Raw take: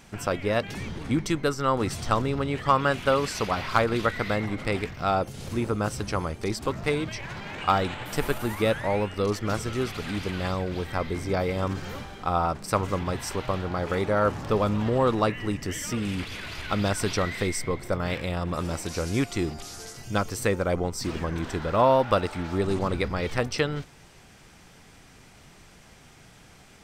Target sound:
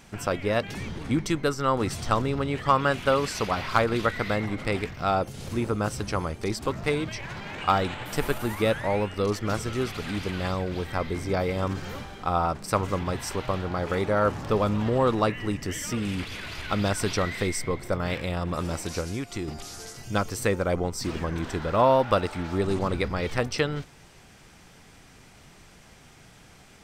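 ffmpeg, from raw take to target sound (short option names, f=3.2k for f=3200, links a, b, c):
-filter_complex "[0:a]asettb=1/sr,asplit=3[a][b][c];[a]atrim=end=19.004[d];[b]atrim=start=19:end=19.48,asetpts=PTS-STARTPTS,afade=t=in:d=0.004:c=qsin,afade=t=out:st=0.476:d=0.004:c=qsin,acompressor=threshold=-28dB:ratio=6[e];[c]atrim=start=19.476[f];[d][e]acrossfade=d=0.004:c1=hsin:c2=qsin[g];[g][f]acrossfade=d=0.004:c1=qsin:c2=hsin"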